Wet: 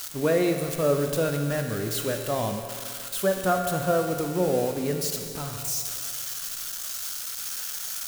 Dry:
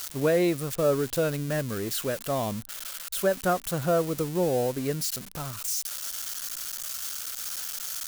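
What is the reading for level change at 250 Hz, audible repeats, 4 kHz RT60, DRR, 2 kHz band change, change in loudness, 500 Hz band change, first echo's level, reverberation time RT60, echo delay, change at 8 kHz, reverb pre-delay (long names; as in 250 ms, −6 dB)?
+1.0 dB, no echo audible, 2.2 s, 3.5 dB, +1.5 dB, +1.5 dB, +1.0 dB, no echo audible, 2.3 s, no echo audible, +1.5 dB, 7 ms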